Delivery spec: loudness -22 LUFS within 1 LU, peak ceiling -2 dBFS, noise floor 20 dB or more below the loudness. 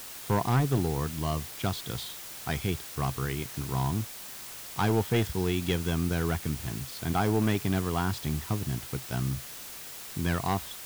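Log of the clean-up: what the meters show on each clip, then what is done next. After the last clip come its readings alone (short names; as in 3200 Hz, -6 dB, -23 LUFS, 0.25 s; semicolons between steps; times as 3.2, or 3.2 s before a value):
clipped 0.9%; flat tops at -19.0 dBFS; noise floor -43 dBFS; noise floor target -51 dBFS; loudness -30.5 LUFS; peak -19.0 dBFS; loudness target -22.0 LUFS
-> clip repair -19 dBFS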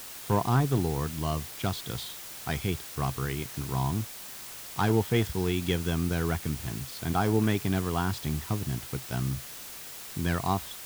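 clipped 0.0%; noise floor -43 dBFS; noise floor target -50 dBFS
-> denoiser 7 dB, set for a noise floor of -43 dBFS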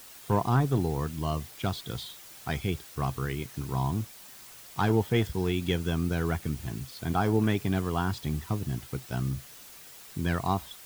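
noise floor -49 dBFS; noise floor target -50 dBFS
-> denoiser 6 dB, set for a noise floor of -49 dBFS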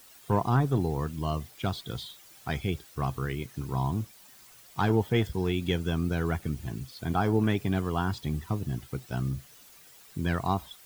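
noise floor -54 dBFS; loudness -30.0 LUFS; peak -12.5 dBFS; loudness target -22.0 LUFS
-> gain +8 dB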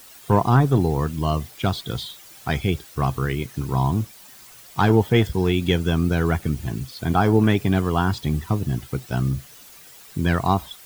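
loudness -22.0 LUFS; peak -4.5 dBFS; noise floor -46 dBFS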